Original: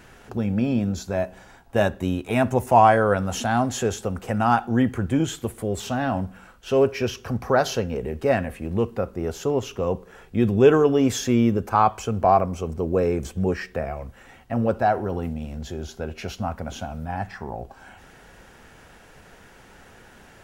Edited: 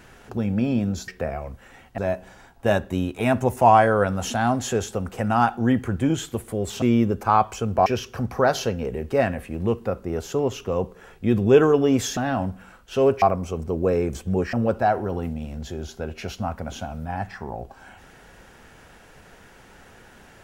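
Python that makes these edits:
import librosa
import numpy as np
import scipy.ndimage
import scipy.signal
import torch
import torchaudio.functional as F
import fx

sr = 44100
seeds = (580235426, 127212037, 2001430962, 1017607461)

y = fx.edit(x, sr, fx.swap(start_s=5.92, length_s=1.05, other_s=11.28, other_length_s=1.04),
    fx.move(start_s=13.63, length_s=0.9, to_s=1.08), tone=tone)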